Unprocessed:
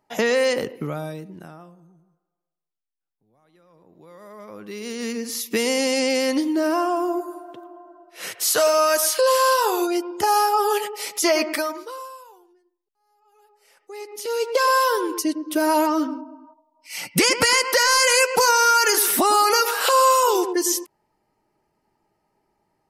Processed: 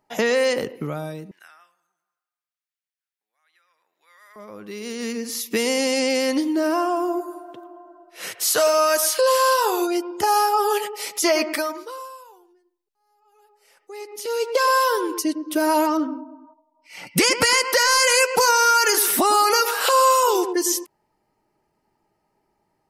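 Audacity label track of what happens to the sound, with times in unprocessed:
1.310000	4.360000	resonant high-pass 1.8 kHz, resonance Q 1.8
15.970000	17.070000	low-pass 1.5 kHz 6 dB/octave

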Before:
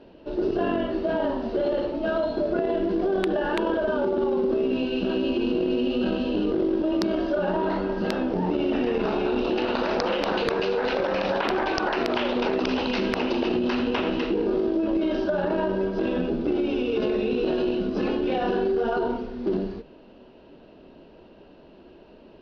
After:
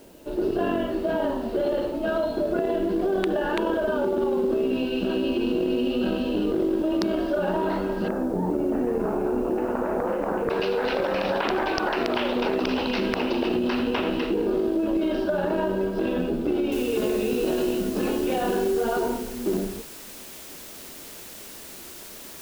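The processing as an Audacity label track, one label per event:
8.080000	10.500000	Bessel low-pass 1.2 kHz, order 6
11.350000	11.870000	careless resampling rate divided by 3×, down none, up filtered
16.720000	16.720000	noise floor step -58 dB -42 dB

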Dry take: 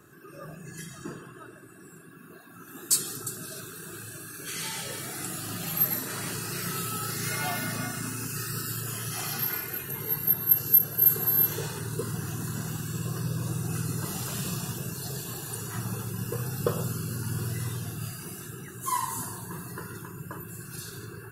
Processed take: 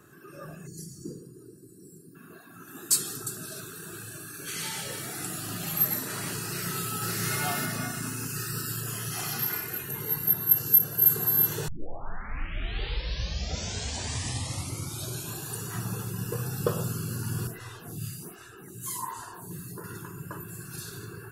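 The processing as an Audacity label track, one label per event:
0.670000	2.150000	time-frequency box 520–3900 Hz -25 dB
6.460000	7.100000	echo throw 550 ms, feedback 10%, level -2.5 dB
11.680000	11.680000	tape start 3.82 s
17.470000	19.840000	lamp-driven phase shifter 1.3 Hz

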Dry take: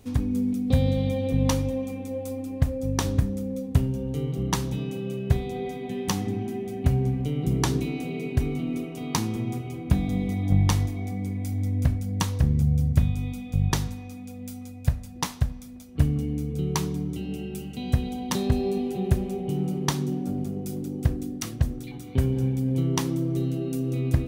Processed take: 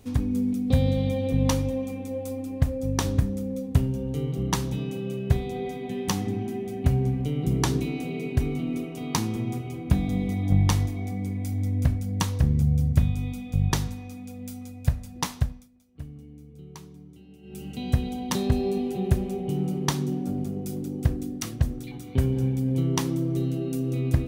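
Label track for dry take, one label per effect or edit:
15.410000	17.700000	dip -17.5 dB, fades 0.28 s

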